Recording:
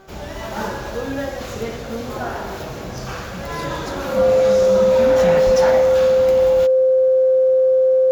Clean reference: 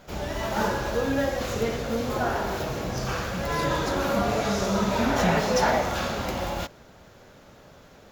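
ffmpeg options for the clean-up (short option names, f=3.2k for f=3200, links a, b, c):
-filter_complex "[0:a]bandreject=f=385.5:t=h:w=4,bandreject=f=771:t=h:w=4,bandreject=f=1.1565k:t=h:w=4,bandreject=f=1.542k:t=h:w=4,bandreject=f=520:w=30,asplit=3[a][b][c];[a]afade=t=out:st=5.45:d=0.02[d];[b]highpass=f=140:w=0.5412,highpass=f=140:w=1.3066,afade=t=in:st=5.45:d=0.02,afade=t=out:st=5.57:d=0.02[e];[c]afade=t=in:st=5.57:d=0.02[f];[d][e][f]amix=inputs=3:normalize=0"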